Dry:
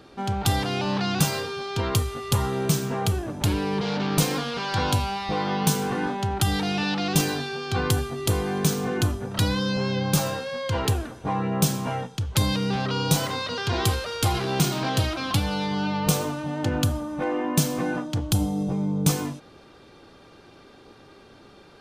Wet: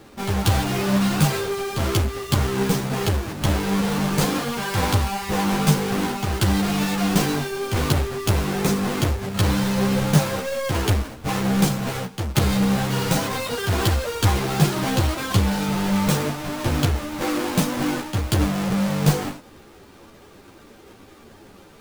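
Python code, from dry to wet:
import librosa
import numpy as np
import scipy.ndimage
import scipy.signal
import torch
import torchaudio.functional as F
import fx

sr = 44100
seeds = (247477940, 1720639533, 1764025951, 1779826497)

y = fx.halfwave_hold(x, sr)
y = fx.ensemble(y, sr)
y = y * librosa.db_to_amplitude(1.5)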